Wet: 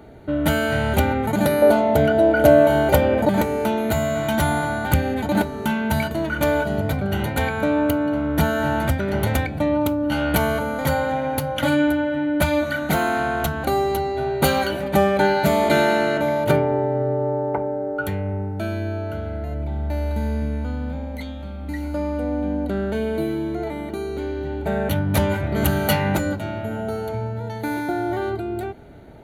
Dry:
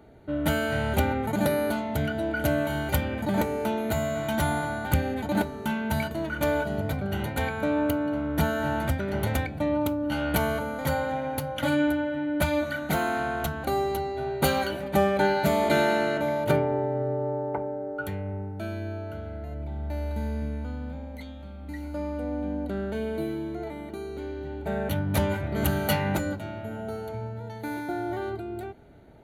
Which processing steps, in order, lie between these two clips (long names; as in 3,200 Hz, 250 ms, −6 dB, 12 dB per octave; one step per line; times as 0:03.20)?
0:01.62–0:03.29: parametric band 540 Hz +12 dB 1.5 octaves
in parallel at −2 dB: downward compressor, threshold −32 dBFS, peak gain reduction 17.5 dB
on the sum: level +3.5 dB